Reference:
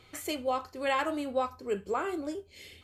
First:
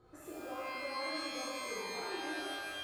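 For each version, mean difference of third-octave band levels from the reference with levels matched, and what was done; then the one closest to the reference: 13.0 dB: EQ curve 440 Hz 0 dB, 1700 Hz -7 dB, 2400 Hz -29 dB, 4200 Hz -16 dB; compressor 3:1, threshold -47 dBFS, peak gain reduction 16 dB; low shelf 370 Hz -4 dB; shimmer reverb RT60 1.8 s, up +12 st, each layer -2 dB, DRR -7.5 dB; gain -4.5 dB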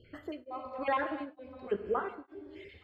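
8.5 dB: random spectral dropouts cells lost 39%; air absorption 400 m; non-linear reverb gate 0.31 s flat, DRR 6.5 dB; beating tremolo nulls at 1.1 Hz; gain +2 dB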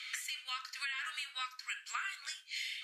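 16.5 dB: steep high-pass 1600 Hz 36 dB/oct; limiter -33.5 dBFS, peak gain reduction 11.5 dB; compressor, threshold -53 dBFS, peak gain reduction 12.5 dB; air absorption 51 m; gain +17 dB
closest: second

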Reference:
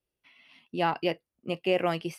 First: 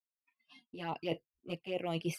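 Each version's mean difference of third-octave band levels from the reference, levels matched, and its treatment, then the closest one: 4.0 dB: spectral noise reduction 25 dB; expander -59 dBFS; reverse; compressor 10:1, threshold -36 dBFS, peak gain reduction 16 dB; reverse; envelope flanger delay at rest 4.5 ms, full sweep at -35 dBFS; gain +5 dB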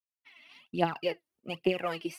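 3.0 dB: HPF 120 Hz; expander -59 dBFS; compressor 1.5:1, threshold -39 dBFS, peak gain reduction 7 dB; phaser 1.2 Hz, delay 3.4 ms, feedback 69%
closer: second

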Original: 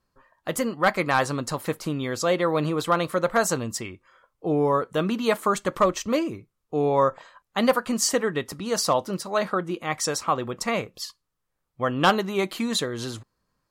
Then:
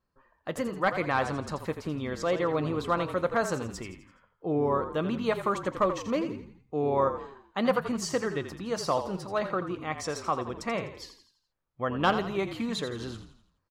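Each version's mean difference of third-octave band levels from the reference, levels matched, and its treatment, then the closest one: 5.5 dB: bell 13000 Hz -13 dB 1.7 oct; on a send: frequency-shifting echo 84 ms, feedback 46%, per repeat -40 Hz, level -10 dB; on the sum: gain -5 dB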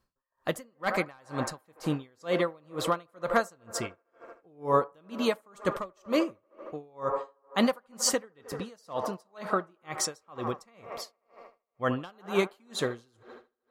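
10.5 dB: on a send: band-limited delay 77 ms, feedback 82%, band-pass 820 Hz, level -12 dB; on the sum: dB-linear tremolo 2.1 Hz, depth 36 dB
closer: first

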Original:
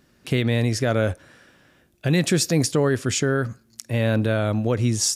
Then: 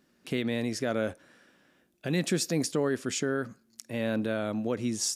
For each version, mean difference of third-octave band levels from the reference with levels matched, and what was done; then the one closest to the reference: 1.5 dB: resonant low shelf 150 Hz -8.5 dB, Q 1.5; gain -8 dB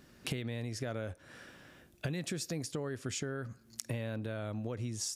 3.5 dB: compressor 16:1, threshold -34 dBFS, peak gain reduction 19.5 dB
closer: first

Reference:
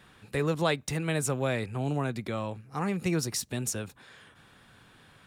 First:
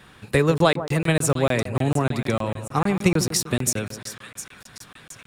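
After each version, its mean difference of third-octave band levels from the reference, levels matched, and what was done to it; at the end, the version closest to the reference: 4.5 dB: transient shaper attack +6 dB, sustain +2 dB; on a send: split-band echo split 1300 Hz, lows 0.148 s, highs 0.709 s, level -12 dB; on the sum: crackling interface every 0.15 s, samples 1024, zero, from 0.58; gain +7 dB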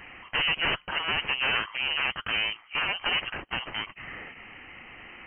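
13.5 dB: sine folder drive 16 dB, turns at -13.5 dBFS; steep high-pass 570 Hz 36 dB/oct; inverted band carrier 3600 Hz; gain -6.5 dB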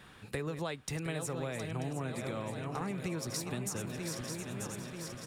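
10.0 dB: regenerating reverse delay 0.468 s, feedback 69%, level -10 dB; compressor, threshold -36 dBFS, peak gain reduction 13.5 dB; on a send: echo 0.715 s -10.5 dB; on the sum: gain +1.5 dB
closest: first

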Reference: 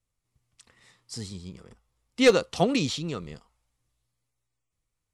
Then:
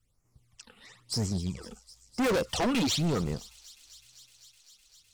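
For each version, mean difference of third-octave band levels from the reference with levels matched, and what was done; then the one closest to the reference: 8.0 dB: in parallel at -8.5 dB: sine folder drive 9 dB, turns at -9.5 dBFS; on the sum: phaser stages 12, 1 Hz, lowest notch 100–3800 Hz; overloaded stage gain 24.5 dB; thin delay 0.255 s, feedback 84%, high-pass 5000 Hz, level -14.5 dB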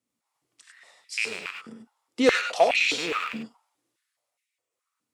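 11.0 dB: rattling part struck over -36 dBFS, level -22 dBFS; limiter -15 dBFS, peak gain reduction 6 dB; non-linear reverb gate 0.12 s rising, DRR 2.5 dB; stepped high-pass 4.8 Hz 240–2300 Hz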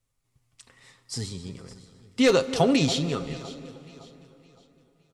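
4.0 dB: comb 7.4 ms, depth 39%; limiter -14 dBFS, peak gain reduction 6.5 dB; echo with dull and thin repeats by turns 0.281 s, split 1800 Hz, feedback 58%, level -13 dB; plate-style reverb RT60 3.7 s, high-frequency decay 0.65×, DRR 14.5 dB; gain +3.5 dB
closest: third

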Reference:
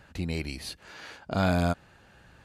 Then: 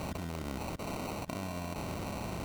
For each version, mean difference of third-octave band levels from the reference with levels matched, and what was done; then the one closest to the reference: 17.0 dB: per-bin compression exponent 0.4; level quantiser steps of 19 dB; sample-and-hold 26×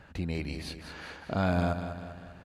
5.5 dB: high shelf 4400 Hz -10 dB; in parallel at -0.5 dB: compressor, threshold -37 dBFS, peak gain reduction 15 dB; on the sum: feedback echo 0.197 s, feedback 51%, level -9 dB; gain -4 dB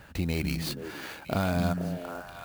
8.5 dB: compressor, threshold -28 dBFS, peak gain reduction 8 dB; on a send: delay with a stepping band-pass 0.24 s, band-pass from 160 Hz, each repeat 1.4 oct, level -0.5 dB; on the sum: clock jitter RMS 0.021 ms; gain +4 dB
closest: second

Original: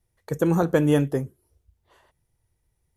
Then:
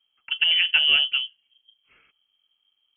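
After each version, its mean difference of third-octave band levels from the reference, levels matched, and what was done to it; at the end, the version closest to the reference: 18.0 dB: added harmonics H 6 -33 dB, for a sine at -8 dBFS; inverted band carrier 3200 Hz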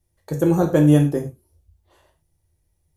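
3.5 dB: bell 1700 Hz -5 dB 2.2 oct; non-linear reverb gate 0.13 s falling, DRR 2 dB; gain +1.5 dB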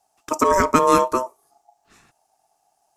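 10.0 dB: bell 6700 Hz +14.5 dB 0.72 oct; ring modulator 770 Hz; gain +6.5 dB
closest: second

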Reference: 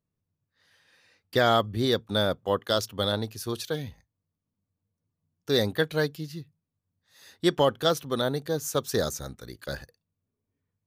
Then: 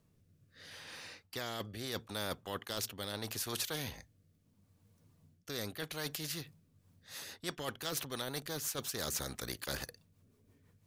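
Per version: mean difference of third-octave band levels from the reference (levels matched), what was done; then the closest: 11.0 dB: reverse; compressor 6:1, threshold -34 dBFS, peak gain reduction 16 dB; reverse; rotary speaker horn 0.75 Hz, later 6 Hz, at 6.43; spectral compressor 2:1; gain +3.5 dB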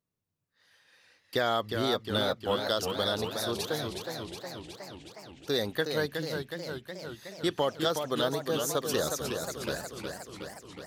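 8.5 dB: compressor 2.5:1, threshold -25 dBFS, peak gain reduction 6 dB; low shelf 180 Hz -9 dB; warbling echo 0.363 s, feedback 68%, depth 135 cents, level -6 dB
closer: second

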